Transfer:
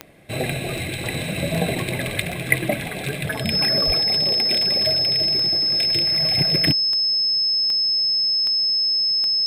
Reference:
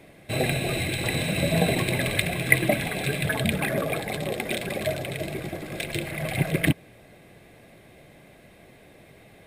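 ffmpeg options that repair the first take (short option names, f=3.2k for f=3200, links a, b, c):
-filter_complex "[0:a]adeclick=t=4,bandreject=f=5.2k:w=30,asplit=3[a][b][c];[a]afade=t=out:st=3.86:d=0.02[d];[b]highpass=f=140:w=0.5412,highpass=f=140:w=1.3066,afade=t=in:st=3.86:d=0.02,afade=t=out:st=3.98:d=0.02[e];[c]afade=t=in:st=3.98:d=0.02[f];[d][e][f]amix=inputs=3:normalize=0"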